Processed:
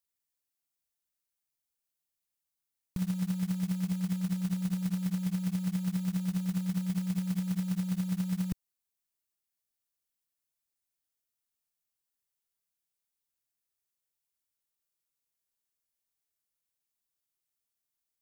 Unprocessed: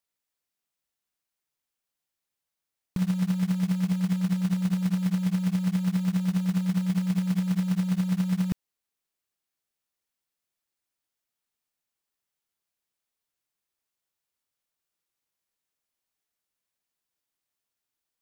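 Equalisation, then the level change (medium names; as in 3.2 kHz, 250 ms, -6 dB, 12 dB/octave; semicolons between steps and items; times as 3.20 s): bass shelf 130 Hz +7.5 dB; treble shelf 5.4 kHz +10 dB; -8.5 dB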